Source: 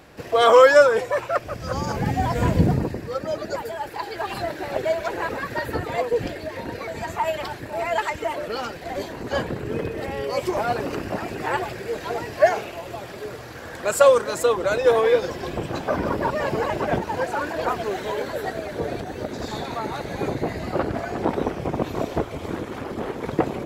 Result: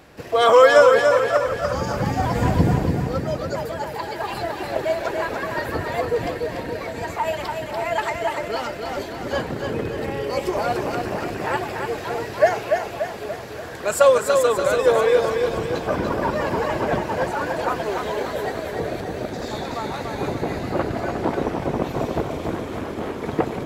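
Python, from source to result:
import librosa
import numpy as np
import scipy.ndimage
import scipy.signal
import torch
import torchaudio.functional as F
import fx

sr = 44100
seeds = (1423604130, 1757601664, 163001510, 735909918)

y = fx.echo_feedback(x, sr, ms=290, feedback_pct=51, wet_db=-5.0)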